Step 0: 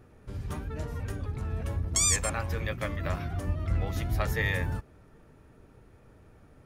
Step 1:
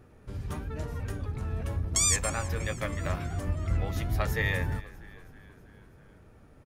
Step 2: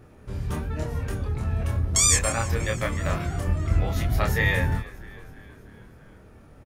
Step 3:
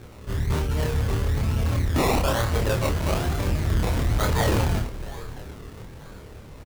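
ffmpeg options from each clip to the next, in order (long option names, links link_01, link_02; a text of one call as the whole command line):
ffmpeg -i in.wav -filter_complex "[0:a]asplit=6[link_01][link_02][link_03][link_04][link_05][link_06];[link_02]adelay=322,afreqshift=-56,volume=-19.5dB[link_07];[link_03]adelay=644,afreqshift=-112,volume=-23.9dB[link_08];[link_04]adelay=966,afreqshift=-168,volume=-28.4dB[link_09];[link_05]adelay=1288,afreqshift=-224,volume=-32.8dB[link_10];[link_06]adelay=1610,afreqshift=-280,volume=-37.2dB[link_11];[link_01][link_07][link_08][link_09][link_10][link_11]amix=inputs=6:normalize=0" out.wav
ffmpeg -i in.wav -filter_complex "[0:a]asplit=2[link_01][link_02];[link_02]adelay=26,volume=-3dB[link_03];[link_01][link_03]amix=inputs=2:normalize=0,volume=4dB" out.wav
ffmpeg -i in.wav -filter_complex "[0:a]acrusher=samples=22:mix=1:aa=0.000001:lfo=1:lforange=13.2:lforate=1.1,asoftclip=type=tanh:threshold=-25.5dB,asplit=2[link_01][link_02];[link_02]adelay=28,volume=-5dB[link_03];[link_01][link_03]amix=inputs=2:normalize=0,volume=6dB" out.wav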